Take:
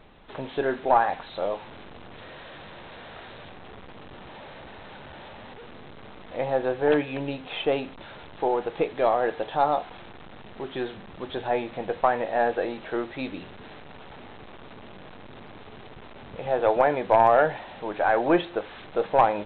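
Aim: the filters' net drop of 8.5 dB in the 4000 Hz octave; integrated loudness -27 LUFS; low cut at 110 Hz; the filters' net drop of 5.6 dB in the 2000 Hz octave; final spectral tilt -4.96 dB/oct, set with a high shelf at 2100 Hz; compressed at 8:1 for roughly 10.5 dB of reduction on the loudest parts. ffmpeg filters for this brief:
-af "highpass=110,equalizer=f=2k:t=o:g=-3,highshelf=f=2.1k:g=-7.5,equalizer=f=4k:t=o:g=-3,acompressor=threshold=-26dB:ratio=8,volume=6.5dB"

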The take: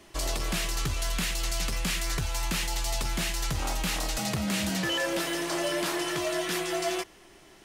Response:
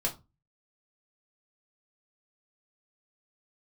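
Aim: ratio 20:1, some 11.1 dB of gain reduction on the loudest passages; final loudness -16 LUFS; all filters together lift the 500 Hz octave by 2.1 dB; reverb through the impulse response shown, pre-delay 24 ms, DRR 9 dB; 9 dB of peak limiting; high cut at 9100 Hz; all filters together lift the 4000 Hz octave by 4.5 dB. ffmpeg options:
-filter_complex "[0:a]lowpass=9.1k,equalizer=f=500:t=o:g=3,equalizer=f=4k:t=o:g=6,acompressor=threshold=-35dB:ratio=20,alimiter=level_in=11dB:limit=-24dB:level=0:latency=1,volume=-11dB,asplit=2[a][b];[1:a]atrim=start_sample=2205,adelay=24[c];[b][c]afir=irnorm=-1:irlink=0,volume=-14.5dB[d];[a][d]amix=inputs=2:normalize=0,volume=26dB"

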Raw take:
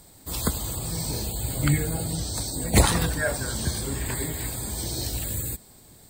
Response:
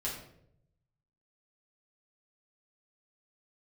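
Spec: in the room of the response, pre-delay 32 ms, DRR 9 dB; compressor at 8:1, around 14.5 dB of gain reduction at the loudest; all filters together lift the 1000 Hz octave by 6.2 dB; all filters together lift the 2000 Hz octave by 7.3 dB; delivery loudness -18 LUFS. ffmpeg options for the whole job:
-filter_complex "[0:a]equalizer=f=1k:t=o:g=6,equalizer=f=2k:t=o:g=7,acompressor=threshold=-26dB:ratio=8,asplit=2[a][b];[1:a]atrim=start_sample=2205,adelay=32[c];[b][c]afir=irnorm=-1:irlink=0,volume=-11.5dB[d];[a][d]amix=inputs=2:normalize=0,volume=11.5dB"

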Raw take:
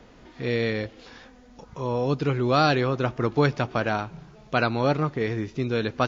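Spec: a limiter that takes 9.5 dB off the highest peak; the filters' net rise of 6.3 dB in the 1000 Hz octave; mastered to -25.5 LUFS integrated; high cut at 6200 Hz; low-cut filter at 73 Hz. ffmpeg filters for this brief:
-af "highpass=73,lowpass=6.2k,equalizer=f=1k:t=o:g=9,volume=1dB,alimiter=limit=-12dB:level=0:latency=1"

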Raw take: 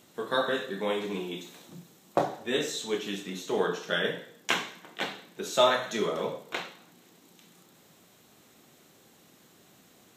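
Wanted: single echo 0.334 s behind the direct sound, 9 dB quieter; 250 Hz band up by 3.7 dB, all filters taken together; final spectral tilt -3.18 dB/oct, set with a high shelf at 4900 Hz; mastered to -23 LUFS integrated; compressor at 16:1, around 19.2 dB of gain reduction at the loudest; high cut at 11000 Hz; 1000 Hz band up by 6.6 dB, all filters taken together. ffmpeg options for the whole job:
-af "lowpass=11k,equalizer=f=250:t=o:g=4.5,equalizer=f=1k:t=o:g=8,highshelf=f=4.9k:g=3.5,acompressor=threshold=-32dB:ratio=16,aecho=1:1:334:0.355,volume=14.5dB"

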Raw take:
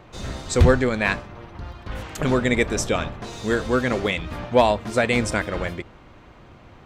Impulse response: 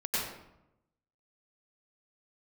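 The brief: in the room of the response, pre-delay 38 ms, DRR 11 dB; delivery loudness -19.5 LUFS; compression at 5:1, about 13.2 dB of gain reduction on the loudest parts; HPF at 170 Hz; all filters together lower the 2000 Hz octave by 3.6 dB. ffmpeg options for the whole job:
-filter_complex "[0:a]highpass=170,equalizer=f=2k:t=o:g=-4.5,acompressor=threshold=-27dB:ratio=5,asplit=2[a][b];[1:a]atrim=start_sample=2205,adelay=38[c];[b][c]afir=irnorm=-1:irlink=0,volume=-18.5dB[d];[a][d]amix=inputs=2:normalize=0,volume=12.5dB"

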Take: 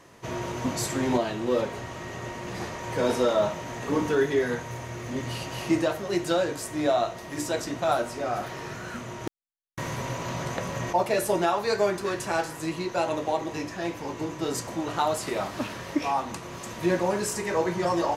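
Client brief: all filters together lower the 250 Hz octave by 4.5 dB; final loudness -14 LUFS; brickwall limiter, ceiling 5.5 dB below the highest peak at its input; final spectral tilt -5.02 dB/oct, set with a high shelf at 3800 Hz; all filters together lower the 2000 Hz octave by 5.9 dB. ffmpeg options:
-af "equalizer=f=250:t=o:g=-6.5,equalizer=f=2k:t=o:g=-6.5,highshelf=f=3.8k:g=-5,volume=18.5dB,alimiter=limit=-1dB:level=0:latency=1"

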